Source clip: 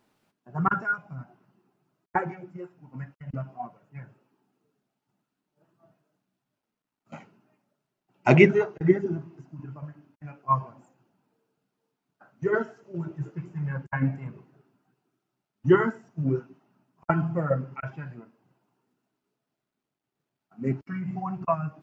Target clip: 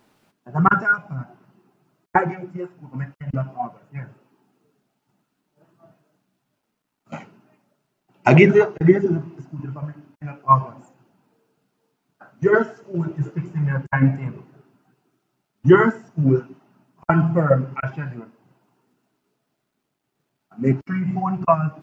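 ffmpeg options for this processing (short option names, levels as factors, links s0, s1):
-af "alimiter=level_in=3.16:limit=0.891:release=50:level=0:latency=1,volume=0.891"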